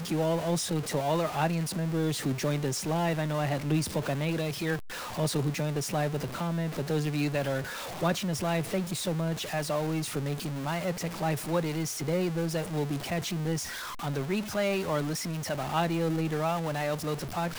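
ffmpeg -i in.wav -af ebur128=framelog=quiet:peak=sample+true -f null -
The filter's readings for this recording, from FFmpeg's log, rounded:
Integrated loudness:
  I:         -30.4 LUFS
  Threshold: -40.4 LUFS
Loudness range:
  LRA:         1.9 LU
  Threshold: -50.5 LUFS
  LRA low:   -31.1 LUFS
  LRA high:  -29.3 LUFS
Sample peak:
  Peak:      -15.0 dBFS
True peak:
  Peak:      -15.0 dBFS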